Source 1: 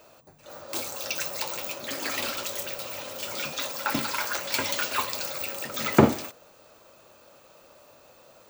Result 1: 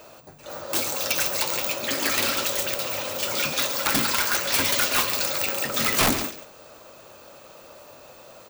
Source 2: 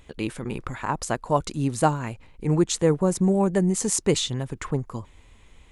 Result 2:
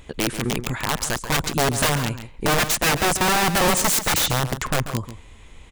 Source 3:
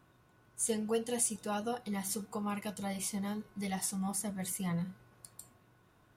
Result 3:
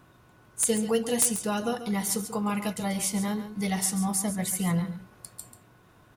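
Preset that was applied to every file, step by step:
dynamic EQ 760 Hz, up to -7 dB, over -40 dBFS, Q 1.4; wrapped overs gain 21 dB; echo 0.138 s -11.5 dB; normalise peaks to -12 dBFS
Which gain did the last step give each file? +7.5, +7.0, +8.5 dB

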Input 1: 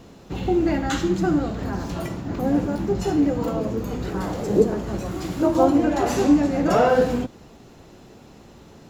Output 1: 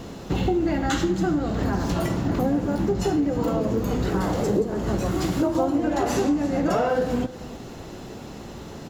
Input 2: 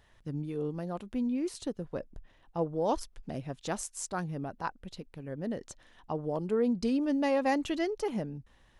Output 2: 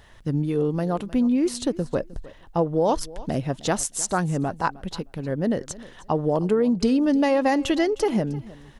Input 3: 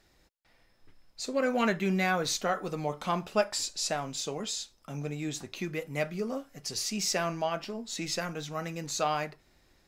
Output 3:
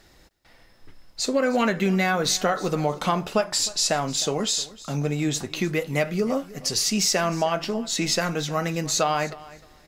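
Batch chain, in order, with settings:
notch 2400 Hz, Q 23; compressor 6:1, threshold -29 dBFS; feedback echo 0.309 s, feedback 18%, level -19.5 dB; match loudness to -24 LUFS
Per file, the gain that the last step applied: +8.5, +12.0, +10.5 dB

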